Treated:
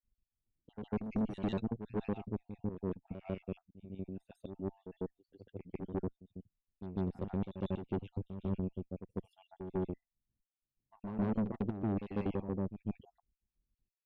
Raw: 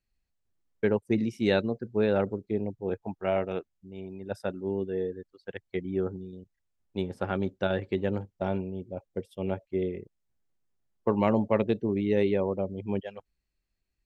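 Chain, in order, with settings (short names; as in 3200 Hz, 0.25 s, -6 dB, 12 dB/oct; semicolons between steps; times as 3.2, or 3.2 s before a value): random spectral dropouts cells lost 54%; EQ curve 260 Hz 0 dB, 1500 Hz -27 dB, 2800 Hz -12 dB, 5200 Hz -18 dB; tube stage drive 32 dB, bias 0.6; reverse echo 0.148 s -9.5 dB; gain +3.5 dB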